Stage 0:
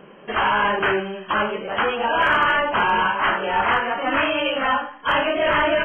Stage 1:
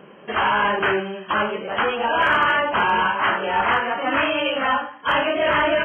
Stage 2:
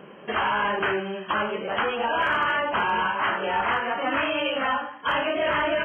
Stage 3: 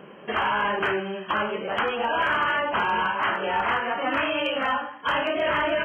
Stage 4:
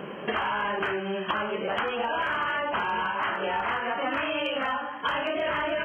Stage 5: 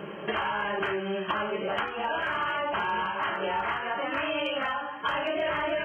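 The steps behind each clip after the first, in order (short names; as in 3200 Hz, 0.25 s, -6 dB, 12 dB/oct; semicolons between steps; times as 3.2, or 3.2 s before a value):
HPF 51 Hz
compressor 2:1, threshold -25 dBFS, peak gain reduction 6 dB
hard clip -16 dBFS, distortion -40 dB
compressor 6:1, threshold -34 dBFS, peak gain reduction 12.5 dB; gain +7.5 dB
notch comb 250 Hz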